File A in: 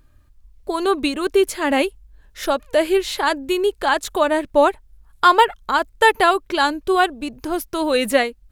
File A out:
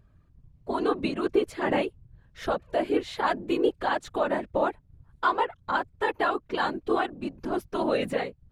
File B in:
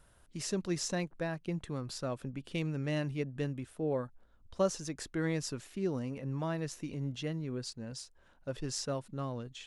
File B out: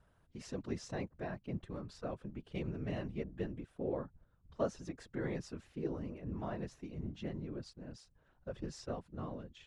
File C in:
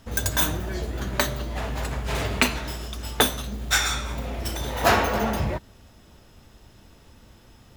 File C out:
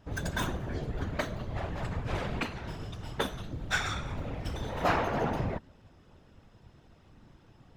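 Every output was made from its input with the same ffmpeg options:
-af "aemphasis=mode=reproduction:type=75fm,alimiter=limit=0.335:level=0:latency=1:release=395,afftfilt=real='hypot(re,im)*cos(2*PI*random(0))':imag='hypot(re,im)*sin(2*PI*random(1))':win_size=512:overlap=0.75"

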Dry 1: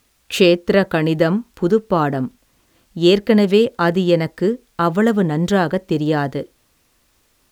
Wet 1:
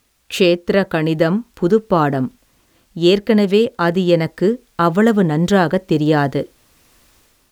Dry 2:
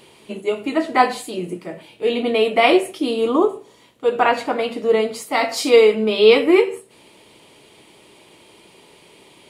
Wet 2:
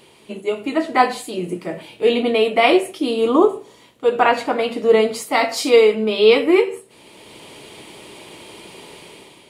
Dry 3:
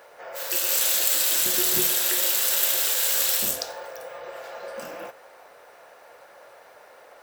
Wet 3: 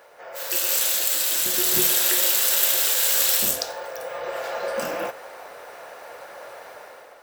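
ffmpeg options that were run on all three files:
-af "dynaudnorm=f=150:g=7:m=3.16,volume=0.891"

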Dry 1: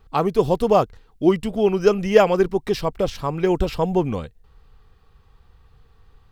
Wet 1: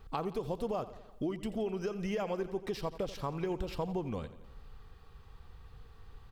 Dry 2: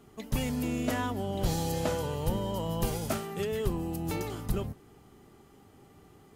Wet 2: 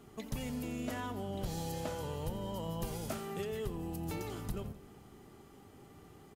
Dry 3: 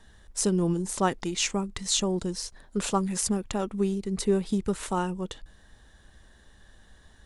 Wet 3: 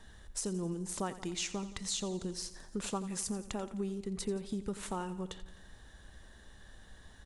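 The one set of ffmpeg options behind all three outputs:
-af "alimiter=limit=0.251:level=0:latency=1:release=211,acompressor=threshold=0.0112:ratio=2.5,aecho=1:1:86|172|258|344|430|516:0.178|0.103|0.0598|0.0347|0.0201|0.0117"

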